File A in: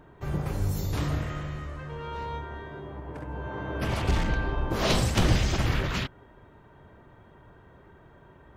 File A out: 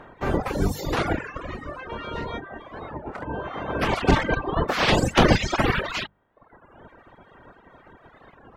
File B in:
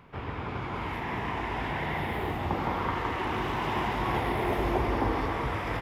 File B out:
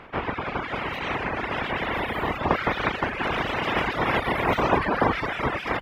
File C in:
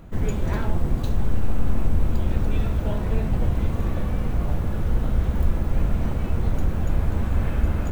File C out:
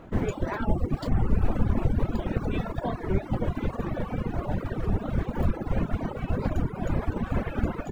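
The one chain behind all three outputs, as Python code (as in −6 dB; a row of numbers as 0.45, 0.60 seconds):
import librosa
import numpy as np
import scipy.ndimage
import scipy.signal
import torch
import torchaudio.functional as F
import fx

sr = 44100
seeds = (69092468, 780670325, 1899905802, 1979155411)

y = fx.spec_clip(x, sr, under_db=15)
y = fx.dereverb_blind(y, sr, rt60_s=1.0)
y = fx.lowpass(y, sr, hz=2100.0, slope=6)
y = fx.hum_notches(y, sr, base_hz=50, count=4)
y = fx.dereverb_blind(y, sr, rt60_s=1.0)
y = fx.record_warp(y, sr, rpm=33.33, depth_cents=250.0)
y = y * 10.0 ** (-26 / 20.0) / np.sqrt(np.mean(np.square(y)))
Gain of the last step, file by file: +9.0, +11.0, −2.5 decibels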